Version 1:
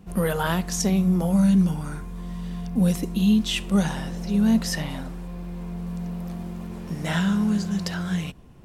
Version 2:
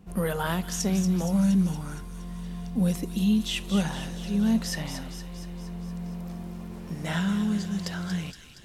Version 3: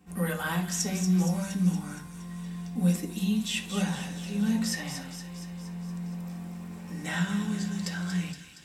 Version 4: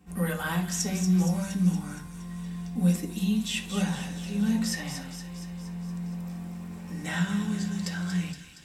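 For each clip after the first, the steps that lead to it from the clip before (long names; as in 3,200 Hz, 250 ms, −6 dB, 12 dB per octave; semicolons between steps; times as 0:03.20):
delay with a high-pass on its return 234 ms, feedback 62%, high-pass 2,500 Hz, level −7 dB; level −4 dB
convolution reverb RT60 0.45 s, pre-delay 3 ms, DRR −1 dB; level −1.5 dB
low-shelf EQ 70 Hz +9.5 dB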